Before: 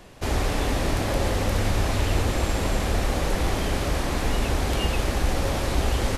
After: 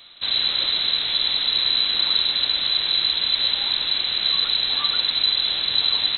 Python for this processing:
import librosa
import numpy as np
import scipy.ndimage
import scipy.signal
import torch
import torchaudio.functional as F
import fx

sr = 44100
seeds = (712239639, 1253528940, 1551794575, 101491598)

y = fx.freq_invert(x, sr, carrier_hz=4000)